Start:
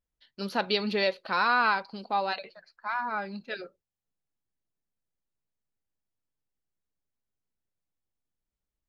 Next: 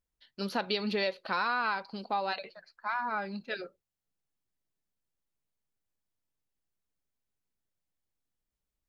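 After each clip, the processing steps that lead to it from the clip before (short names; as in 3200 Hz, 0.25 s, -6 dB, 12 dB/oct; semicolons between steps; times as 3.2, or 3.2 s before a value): compressor 3:1, threshold -28 dBFS, peak gain reduction 7 dB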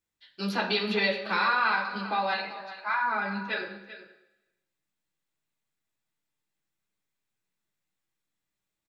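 echo 0.391 s -14 dB; reverb RT60 1.0 s, pre-delay 3 ms, DRR -4 dB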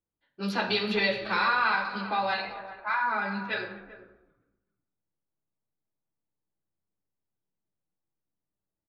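frequency-shifting echo 0.257 s, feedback 42%, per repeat -85 Hz, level -21 dB; low-pass opened by the level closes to 770 Hz, open at -25.5 dBFS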